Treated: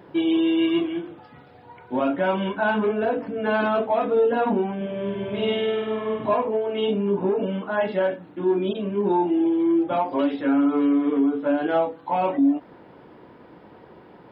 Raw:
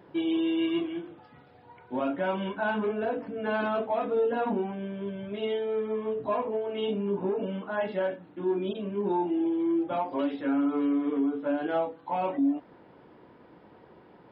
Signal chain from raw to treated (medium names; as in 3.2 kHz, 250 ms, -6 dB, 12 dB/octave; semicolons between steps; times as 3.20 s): 4.76–6.34 s: flutter echo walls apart 8.5 m, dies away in 1.4 s; endings held to a fixed fall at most 500 dB/s; trim +6.5 dB